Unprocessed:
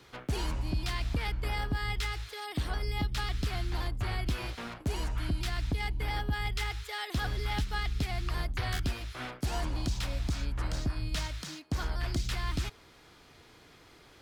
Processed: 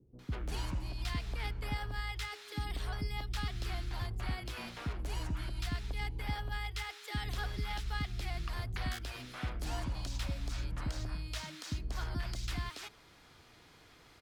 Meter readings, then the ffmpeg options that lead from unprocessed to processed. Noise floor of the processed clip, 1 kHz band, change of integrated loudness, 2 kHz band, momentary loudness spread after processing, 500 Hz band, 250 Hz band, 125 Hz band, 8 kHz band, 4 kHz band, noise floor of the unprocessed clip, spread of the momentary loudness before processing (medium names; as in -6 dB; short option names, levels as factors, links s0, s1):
-60 dBFS, -5.0 dB, -5.0 dB, -5.0 dB, 5 LU, -6.5 dB, -6.5 dB, -5.0 dB, -4.5 dB, -5.0 dB, -57 dBFS, 4 LU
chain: -filter_complex "[0:a]asplit=2[s0][s1];[s1]alimiter=level_in=2.37:limit=0.0631:level=0:latency=1,volume=0.422,volume=0.75[s2];[s0][s2]amix=inputs=2:normalize=0,acrossover=split=380[s3][s4];[s4]adelay=190[s5];[s3][s5]amix=inputs=2:normalize=0,volume=0.422"